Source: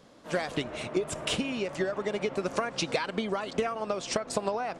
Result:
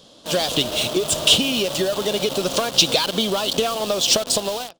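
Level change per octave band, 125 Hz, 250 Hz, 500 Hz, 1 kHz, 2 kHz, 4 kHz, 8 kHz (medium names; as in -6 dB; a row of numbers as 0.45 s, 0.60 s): +7.5 dB, +7.5 dB, +8.0 dB, +6.5 dB, +7.0 dB, +19.0 dB, +17.5 dB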